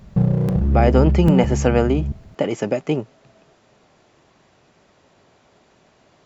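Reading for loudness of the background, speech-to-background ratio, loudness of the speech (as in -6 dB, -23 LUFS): -20.0 LUFS, -0.5 dB, -20.5 LUFS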